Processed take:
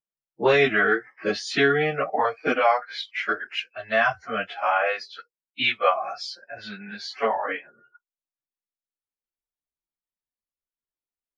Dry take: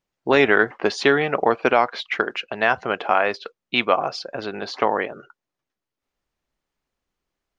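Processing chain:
time stretch by phase vocoder 1.5×
noise reduction from a noise print of the clip's start 19 dB

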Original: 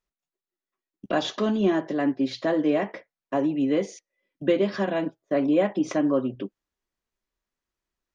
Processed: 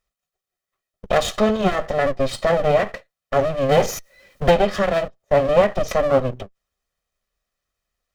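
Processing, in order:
lower of the sound and its delayed copy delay 1.6 ms
0:03.69–0:04.51: power curve on the samples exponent 0.7
every ending faded ahead of time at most 320 dB per second
level +8 dB

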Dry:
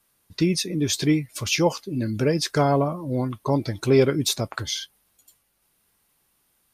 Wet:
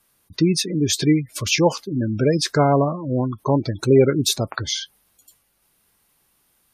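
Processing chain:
gate on every frequency bin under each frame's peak −25 dB strong
level +3.5 dB

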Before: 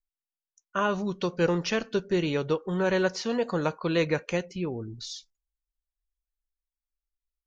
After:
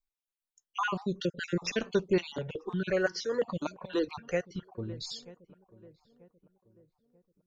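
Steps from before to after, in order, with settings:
time-frequency cells dropped at random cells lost 39%
feedback echo with a low-pass in the loop 937 ms, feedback 42%, low-pass 970 Hz, level −21 dB
0:02.21–0:04.72: step-sequenced phaser 5.8 Hz 470–2,500 Hz

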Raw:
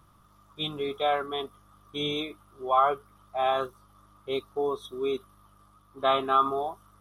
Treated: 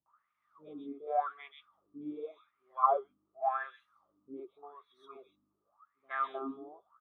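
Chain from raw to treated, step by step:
dynamic equaliser 1,600 Hz, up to +4 dB, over −38 dBFS, Q 0.89
LFO wah 0.88 Hz 260–2,300 Hz, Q 10
three-band delay without the direct sound lows, mids, highs 60/190 ms, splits 370/3,000 Hz
level +2 dB

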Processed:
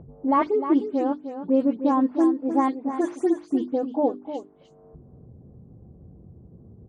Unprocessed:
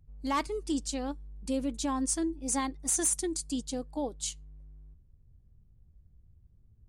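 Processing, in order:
every frequency bin delayed by itself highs late, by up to 128 ms
high-pass filter 240 Hz 12 dB per octave
low-pass that shuts in the quiet parts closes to 730 Hz, open at −27 dBFS
low-pass filter 1,000 Hz 12 dB per octave
mains-hum notches 50/100/150/200/250/300/350/400 Hz
in parallel at +2 dB: upward compression, threshold −37 dBFS
on the sum: single-tap delay 305 ms −10 dB
level +6 dB

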